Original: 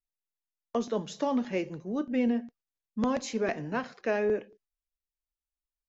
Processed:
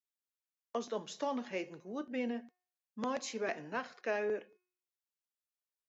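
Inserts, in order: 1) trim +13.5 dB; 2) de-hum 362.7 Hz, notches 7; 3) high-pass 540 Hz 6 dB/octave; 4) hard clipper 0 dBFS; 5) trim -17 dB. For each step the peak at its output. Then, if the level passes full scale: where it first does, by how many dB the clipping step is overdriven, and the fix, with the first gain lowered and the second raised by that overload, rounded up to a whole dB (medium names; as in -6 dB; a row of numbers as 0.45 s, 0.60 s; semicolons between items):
-4.0 dBFS, -4.5 dBFS, -5.0 dBFS, -5.0 dBFS, -22.0 dBFS; nothing clips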